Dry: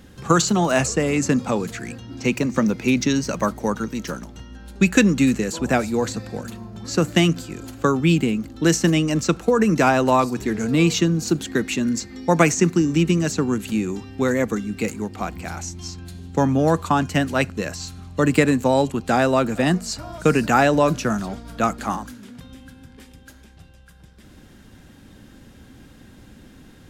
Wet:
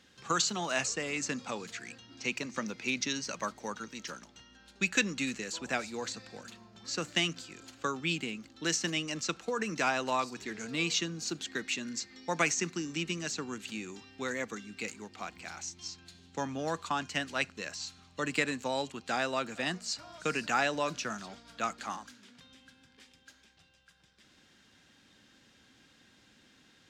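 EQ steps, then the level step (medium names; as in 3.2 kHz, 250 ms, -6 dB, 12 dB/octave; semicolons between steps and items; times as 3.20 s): distance through air 150 m; differentiator; bass shelf 310 Hz +9.5 dB; +4.5 dB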